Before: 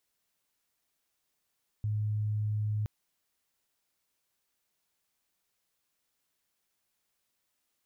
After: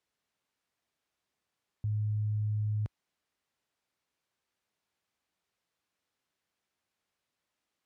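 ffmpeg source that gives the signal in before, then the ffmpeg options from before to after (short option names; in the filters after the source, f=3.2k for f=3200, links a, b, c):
-f lavfi -i "aevalsrc='0.0398*sin(2*PI*106*t)':d=1.02:s=44100"
-af "highpass=50,aemphasis=mode=reproduction:type=50fm"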